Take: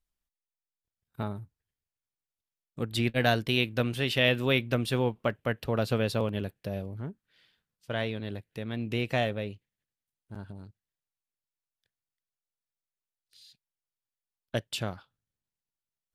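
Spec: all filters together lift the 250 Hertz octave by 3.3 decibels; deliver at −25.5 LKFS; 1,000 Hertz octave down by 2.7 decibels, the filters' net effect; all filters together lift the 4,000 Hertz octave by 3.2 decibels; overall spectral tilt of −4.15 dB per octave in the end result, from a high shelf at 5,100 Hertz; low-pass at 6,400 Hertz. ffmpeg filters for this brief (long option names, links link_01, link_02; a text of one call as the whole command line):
ffmpeg -i in.wav -af "lowpass=6400,equalizer=frequency=250:width_type=o:gain=4,equalizer=frequency=1000:width_type=o:gain=-5,equalizer=frequency=4000:width_type=o:gain=7,highshelf=frequency=5100:gain=-5.5,volume=3.5dB" out.wav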